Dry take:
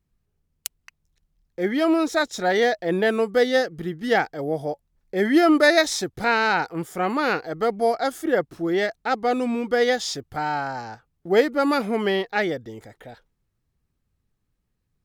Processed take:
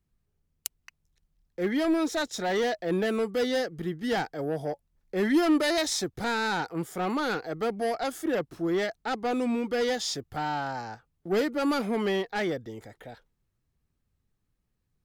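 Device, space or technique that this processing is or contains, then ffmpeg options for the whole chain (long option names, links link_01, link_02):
one-band saturation: -filter_complex "[0:a]acrossover=split=290|4500[link_01][link_02][link_03];[link_02]asoftclip=type=tanh:threshold=-22.5dB[link_04];[link_01][link_04][link_03]amix=inputs=3:normalize=0,volume=-2.5dB"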